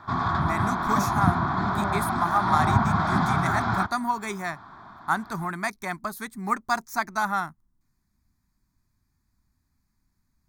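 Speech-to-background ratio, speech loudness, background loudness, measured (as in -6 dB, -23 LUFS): -5.0 dB, -29.5 LUFS, -24.5 LUFS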